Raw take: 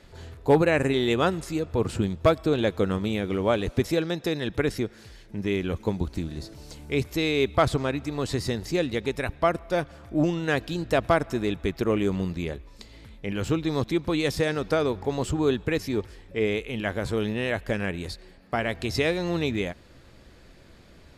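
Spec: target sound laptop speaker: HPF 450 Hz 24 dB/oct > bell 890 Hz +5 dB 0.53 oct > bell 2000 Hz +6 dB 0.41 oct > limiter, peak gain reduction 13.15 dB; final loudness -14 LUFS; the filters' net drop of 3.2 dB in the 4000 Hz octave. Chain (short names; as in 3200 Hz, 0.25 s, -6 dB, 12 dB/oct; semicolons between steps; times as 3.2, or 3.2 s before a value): HPF 450 Hz 24 dB/oct; bell 890 Hz +5 dB 0.53 oct; bell 2000 Hz +6 dB 0.41 oct; bell 4000 Hz -4.5 dB; gain +19.5 dB; limiter -1 dBFS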